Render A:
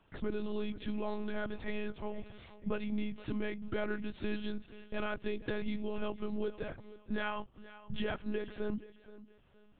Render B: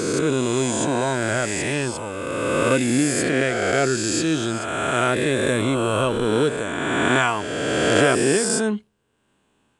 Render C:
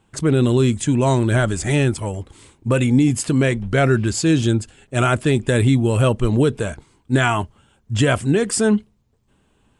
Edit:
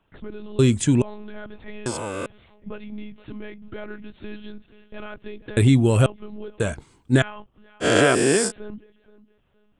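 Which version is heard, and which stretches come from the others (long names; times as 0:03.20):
A
0:00.59–0:01.02: punch in from C
0:01.86–0:02.26: punch in from B
0:05.57–0:06.06: punch in from C
0:06.60–0:07.22: punch in from C
0:07.83–0:08.49: punch in from B, crossfade 0.06 s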